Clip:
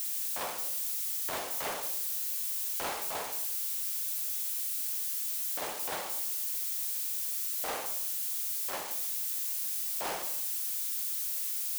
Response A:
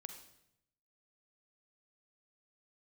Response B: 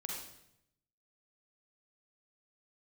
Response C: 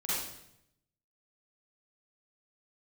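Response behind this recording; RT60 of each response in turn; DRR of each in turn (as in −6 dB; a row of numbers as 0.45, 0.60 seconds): A; 0.80, 0.80, 0.75 seconds; 6.0, −1.5, −10.5 decibels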